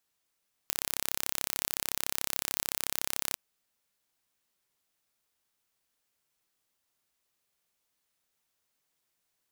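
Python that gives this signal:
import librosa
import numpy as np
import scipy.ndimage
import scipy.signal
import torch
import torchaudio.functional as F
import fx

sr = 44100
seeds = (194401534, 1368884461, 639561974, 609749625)

y = 10.0 ** (-3.5 / 20.0) * (np.mod(np.arange(round(2.67 * sr)), round(sr / 33.7)) == 0)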